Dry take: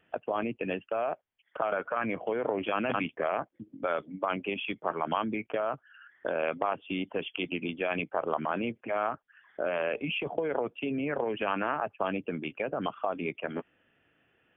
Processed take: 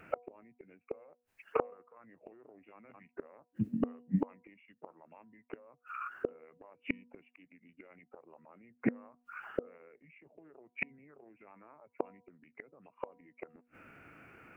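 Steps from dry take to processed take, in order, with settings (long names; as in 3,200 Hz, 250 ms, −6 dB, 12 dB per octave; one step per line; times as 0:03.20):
formants moved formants −3 semitones
gate with flip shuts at −30 dBFS, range −40 dB
hum removal 242.9 Hz, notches 4
level +13 dB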